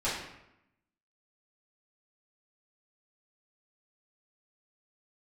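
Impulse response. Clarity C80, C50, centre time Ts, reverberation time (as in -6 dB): 5.5 dB, 2.5 dB, 55 ms, 0.85 s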